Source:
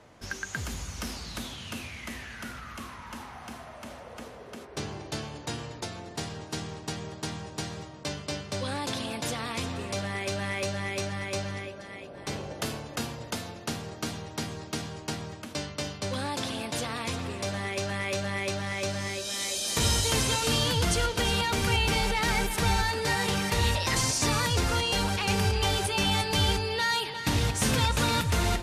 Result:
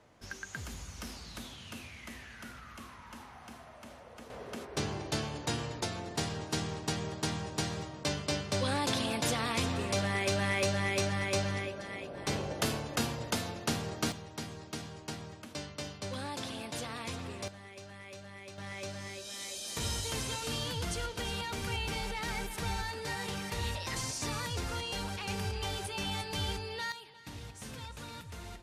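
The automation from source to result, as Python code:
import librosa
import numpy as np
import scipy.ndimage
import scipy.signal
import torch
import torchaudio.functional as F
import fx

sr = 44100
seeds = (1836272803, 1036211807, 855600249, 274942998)

y = fx.gain(x, sr, db=fx.steps((0.0, -7.5), (4.3, 1.0), (14.12, -7.0), (17.48, -17.5), (18.58, -10.0), (26.92, -19.5)))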